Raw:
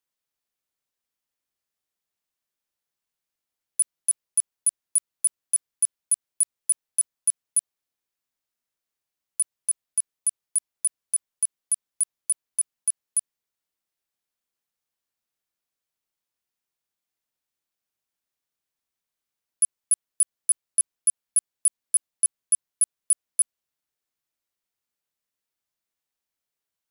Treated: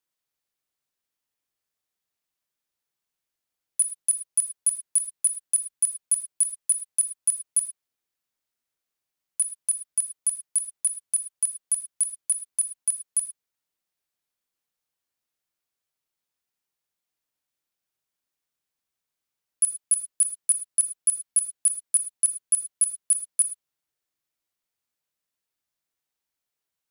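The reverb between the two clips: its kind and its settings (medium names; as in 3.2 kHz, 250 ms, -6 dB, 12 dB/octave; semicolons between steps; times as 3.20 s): gated-style reverb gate 130 ms flat, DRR 9.5 dB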